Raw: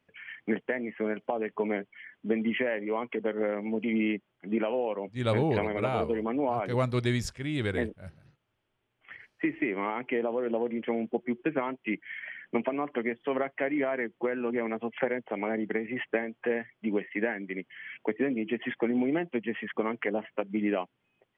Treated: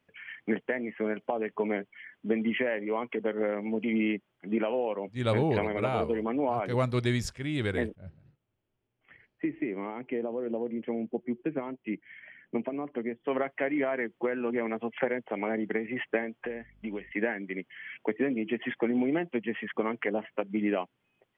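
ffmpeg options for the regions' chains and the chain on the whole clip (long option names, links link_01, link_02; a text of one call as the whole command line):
ffmpeg -i in.wav -filter_complex "[0:a]asettb=1/sr,asplit=3[link_01][link_02][link_03];[link_01]atrim=end=7.954[link_04];[link_02]atrim=start=7.95:end=13.28,asetpts=PTS-STARTPTS,afade=type=in:duration=0.004:curve=qsin,afade=type=out:start_time=5.326:duration=0.004:curve=qsin,lowpass=2600,equalizer=frequency=1400:width=0.54:gain=-9.5[link_05];[link_03]atrim=start=13.276[link_06];[link_04][link_05]acrossfade=duration=0.004:curve1=hsin:curve2=qsin[link_07];[link_07][link_06]acrossfade=duration=0.004:curve1=qsin:curve2=hsin,asettb=1/sr,asplit=3[link_08][link_09][link_10];[link_08]atrim=end=16.454[link_11];[link_09]atrim=start=16.45:end=17.12,asetpts=PTS-STARTPTS,afade=type=in:duration=0.004:curve=qsin,afade=type=out:start_time=0.666:duration=0.004:curve=qsin,acrossover=split=620|1700[link_12][link_13][link_14];[link_12]acompressor=threshold=-35dB:ratio=4[link_15];[link_13]acompressor=threshold=-50dB:ratio=4[link_16];[link_14]acompressor=threshold=-48dB:ratio=4[link_17];[link_15][link_16][link_17]amix=inputs=3:normalize=0,aeval=exprs='val(0)+0.00112*(sin(2*PI*50*n/s)+sin(2*PI*2*50*n/s)/2+sin(2*PI*3*50*n/s)/3+sin(2*PI*4*50*n/s)/4+sin(2*PI*5*50*n/s)/5)':channel_layout=same[link_18];[link_10]atrim=start=17.116[link_19];[link_11][link_18]acrossfade=duration=0.004:curve1=hsin:curve2=qsin[link_20];[link_20][link_19]acrossfade=duration=0.004:curve1=qsin:curve2=hsin" out.wav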